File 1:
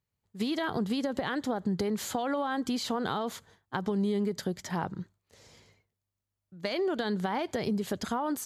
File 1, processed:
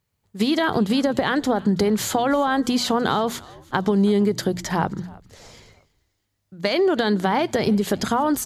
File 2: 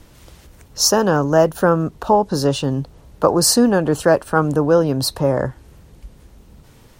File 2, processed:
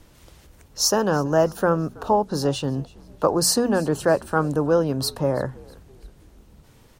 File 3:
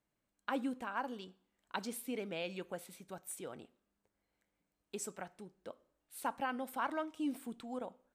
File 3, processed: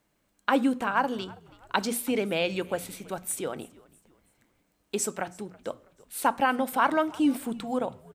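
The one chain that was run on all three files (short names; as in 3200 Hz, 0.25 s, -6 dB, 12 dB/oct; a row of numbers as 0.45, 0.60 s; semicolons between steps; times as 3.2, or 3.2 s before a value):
notches 60/120/180/240 Hz; frequency-shifting echo 0.326 s, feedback 42%, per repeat -81 Hz, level -23 dB; normalise peaks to -6 dBFS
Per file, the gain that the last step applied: +10.5, -5.0, +13.5 dB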